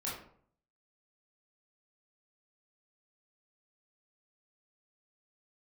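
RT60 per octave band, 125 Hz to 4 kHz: 0.75, 0.65, 0.60, 0.55, 0.45, 0.35 seconds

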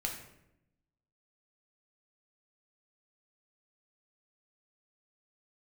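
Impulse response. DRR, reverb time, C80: 0.0 dB, 0.85 s, 8.5 dB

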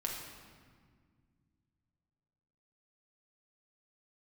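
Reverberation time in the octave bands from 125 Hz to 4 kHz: 3.3, 2.9, 1.9, 1.7, 1.6, 1.3 seconds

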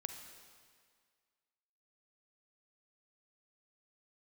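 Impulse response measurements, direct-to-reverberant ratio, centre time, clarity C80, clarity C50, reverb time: 5.5 dB, 37 ms, 7.5 dB, 6.5 dB, 1.9 s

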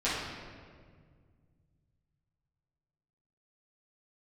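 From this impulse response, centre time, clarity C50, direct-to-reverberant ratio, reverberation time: 95 ms, −0.5 dB, −12.0 dB, 1.9 s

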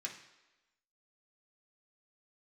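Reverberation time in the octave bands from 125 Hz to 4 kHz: 0.65, 0.95, 1.1, 1.1, 1.1, 1.0 seconds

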